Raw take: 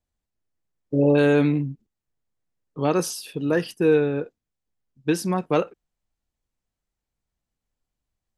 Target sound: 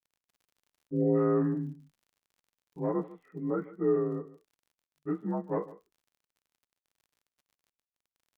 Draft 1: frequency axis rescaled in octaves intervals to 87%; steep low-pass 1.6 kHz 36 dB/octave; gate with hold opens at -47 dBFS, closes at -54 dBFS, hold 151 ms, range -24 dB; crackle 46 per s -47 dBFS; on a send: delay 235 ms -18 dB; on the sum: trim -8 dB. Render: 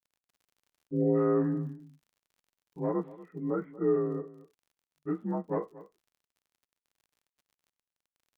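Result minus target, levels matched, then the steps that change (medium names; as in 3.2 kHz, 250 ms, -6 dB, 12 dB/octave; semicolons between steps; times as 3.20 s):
echo 86 ms late
change: delay 149 ms -18 dB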